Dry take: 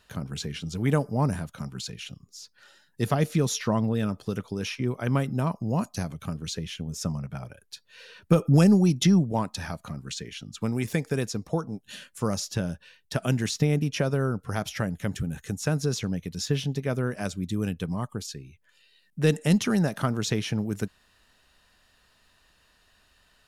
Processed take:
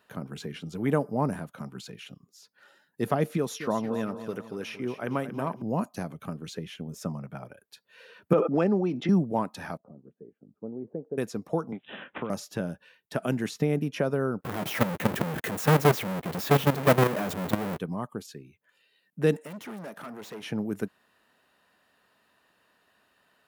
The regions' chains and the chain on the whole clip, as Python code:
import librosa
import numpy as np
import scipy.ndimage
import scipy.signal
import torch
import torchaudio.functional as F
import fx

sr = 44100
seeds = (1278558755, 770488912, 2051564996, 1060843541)

y = fx.chain(x, sr, fx.low_shelf(hz=320.0, db=-6.0),
    fx.echo_feedback(ms=231, feedback_pct=43, wet_db=-11.0), at=(3.37, 5.62))
y = fx.chain(y, sr, fx.bandpass_edges(low_hz=280.0, high_hz=3000.0),
    fx.sustainer(db_per_s=65.0), at=(8.33, 9.09))
y = fx.chain(y, sr, fx.ladder_lowpass(hz=660.0, resonance_pct=30),
    fx.low_shelf(hz=200.0, db=-7.5), at=(9.77, 11.18))
y = fx.chain(y, sr, fx.resample_bad(factor=6, down='none', up='filtered'),
    fx.band_squash(depth_pct=100), at=(11.72, 12.3))
y = fx.chain(y, sr, fx.halfwave_hold(),
    fx.leveller(passes=5),
    fx.level_steps(step_db=14), at=(14.41, 17.78))
y = fx.chain(y, sr, fx.highpass(hz=330.0, slope=6),
    fx.tube_stage(drive_db=36.0, bias=0.5), at=(19.36, 20.43))
y = scipy.signal.sosfilt(scipy.signal.butter(2, 210.0, 'highpass', fs=sr, output='sos'), y)
y = fx.peak_eq(y, sr, hz=5800.0, db=-12.5, octaves=2.2)
y = y * 10.0 ** (1.5 / 20.0)